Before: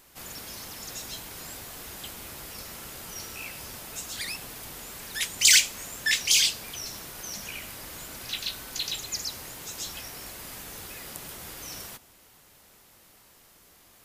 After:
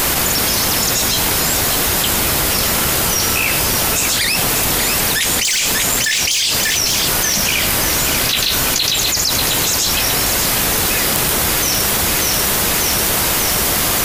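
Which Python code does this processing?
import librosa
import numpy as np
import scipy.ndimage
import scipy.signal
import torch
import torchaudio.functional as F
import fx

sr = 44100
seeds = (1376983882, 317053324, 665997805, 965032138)

p1 = fx.rider(x, sr, range_db=10, speed_s=0.5)
p2 = x + (p1 * librosa.db_to_amplitude(3.0))
p3 = np.clip(10.0 ** (11.0 / 20.0) * p2, -1.0, 1.0) / 10.0 ** (11.0 / 20.0)
p4 = fx.echo_feedback(p3, sr, ms=591, feedback_pct=56, wet_db=-10.0)
p5 = fx.env_flatten(p4, sr, amount_pct=100)
y = p5 * librosa.db_to_amplitude(-2.0)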